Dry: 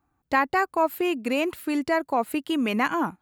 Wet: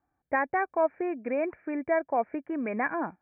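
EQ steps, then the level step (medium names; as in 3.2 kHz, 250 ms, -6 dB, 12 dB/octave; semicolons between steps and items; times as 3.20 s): rippled Chebyshev low-pass 2.4 kHz, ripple 9 dB; 0.0 dB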